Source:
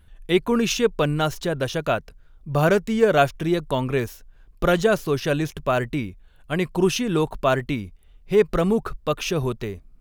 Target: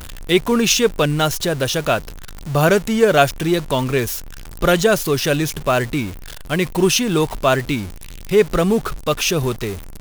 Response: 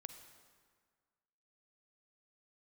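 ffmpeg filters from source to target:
-af "aeval=exprs='val(0)+0.5*0.0237*sgn(val(0))':c=same,highshelf=f=3.2k:g=8,volume=3dB"

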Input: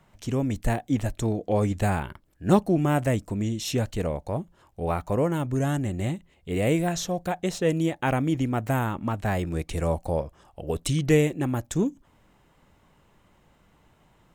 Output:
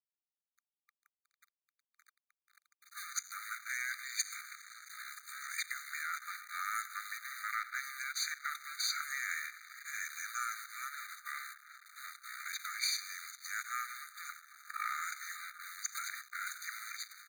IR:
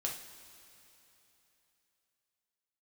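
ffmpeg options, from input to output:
-filter_complex "[0:a]areverse,asplit=2[a][b];[1:a]atrim=start_sample=2205[c];[b][c]afir=irnorm=-1:irlink=0,volume=-11dB[d];[a][d]amix=inputs=2:normalize=0,acompressor=threshold=-34dB:ratio=2,alimiter=level_in=4dB:limit=-24dB:level=0:latency=1:release=49,volume=-4dB,equalizer=f=270:t=o:w=0.88:g=7.5,asplit=2[e][f];[f]adelay=90,lowpass=f=2k:p=1,volume=-21dB,asplit=2[g][h];[h]adelay=90,lowpass=f=2k:p=1,volume=0.36,asplit=2[i][j];[j]adelay=90,lowpass=f=2k:p=1,volume=0.36[k];[e][g][i][k]amix=inputs=4:normalize=0,asetrate=36603,aresample=44100,asubboost=boost=5.5:cutoff=58,acrusher=bits=7:mode=log:mix=0:aa=0.000001,aeval=exprs='sgn(val(0))*max(abs(val(0))-0.00562,0)':c=same,afftfilt=real='re*eq(mod(floor(b*sr/1024/1200),2),1)':imag='im*eq(mod(floor(b*sr/1024/1200),2),1)':win_size=1024:overlap=0.75,volume=12dB"

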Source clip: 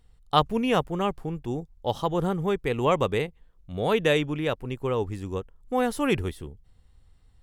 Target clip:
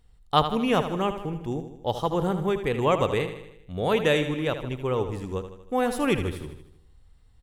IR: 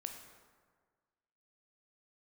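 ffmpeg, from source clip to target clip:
-af "aecho=1:1:78|156|234|312|390|468:0.316|0.174|0.0957|0.0526|0.0289|0.0159"

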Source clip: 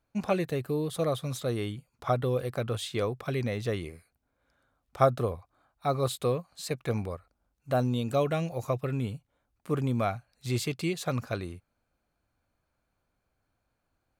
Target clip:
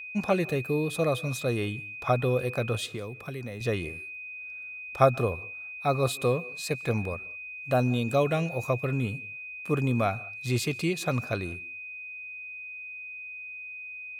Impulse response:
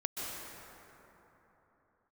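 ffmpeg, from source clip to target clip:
-filter_complex "[0:a]aeval=exprs='val(0)+0.01*sin(2*PI*2500*n/s)':c=same,asettb=1/sr,asplit=3[a][b][c];[a]atrim=end=2.864[d];[b]atrim=start=2.86:end=3.61,asetpts=PTS-STARTPTS,afade=t=in:d=0.004:c=qsin,afade=t=out:st=0.746:d=0.004:c=qsin,acrossover=split=340|1800|7900[e][f][g][h];[e]acompressor=threshold=-40dB:ratio=4[i];[f]acompressor=threshold=-44dB:ratio=4[j];[g]acompressor=threshold=-52dB:ratio=4[k];[h]acompressor=threshold=-59dB:ratio=4[l];[i][j][k][l]amix=inputs=4:normalize=0[m];[c]atrim=start=3.606[n];[d][m]acrossfade=d=0.004:c1=hsin:c2=qsin[o];[o][n]acrossfade=d=0.004:c1=qsin:c2=hsin,asplit=2[p][q];[1:a]atrim=start_sample=2205,afade=t=out:st=0.26:d=0.01,atrim=end_sample=11907[r];[q][r]afir=irnorm=-1:irlink=0,volume=-20dB[s];[p][s]amix=inputs=2:normalize=0,volume=1.5dB"

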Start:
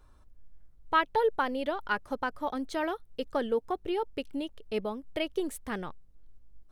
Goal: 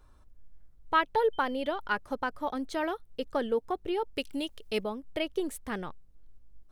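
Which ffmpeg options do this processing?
-filter_complex "[0:a]asettb=1/sr,asplit=3[a][b][c];[a]atrim=end=1.334[d];[b]atrim=start=1.33:end=1.78,asetpts=PTS-STARTPTS,afade=t=in:d=0.004:c=qsin,afade=t=out:st=0.446:d=0.004:c=qsin,aeval=exprs='val(0)+0.00251*sin(2*PI*3100*n/s)':c=same[e];[c]atrim=start=1.776[f];[d][e]acrossfade=d=0.004:c1=hsin:c2=qsin[g];[g][f]acrossfade=d=0.004:c1=qsin:c2=hsin,asettb=1/sr,asplit=3[h][i][j];[h]atrim=end=4.164[k];[i]atrim=start=4.16:end=4.84,asetpts=PTS-STARTPTS,afade=t=in:d=0.004:c=qsin,afade=t=out:st=0.676:d=0.004:c=qsin,highshelf=f=2.3k:g=10.5[l];[j]atrim=start=4.836[m];[k][l]acrossfade=d=0.004:c1=hsin:c2=qsin[n];[n][m]acrossfade=d=0.004:c1=qsin:c2=hsin"

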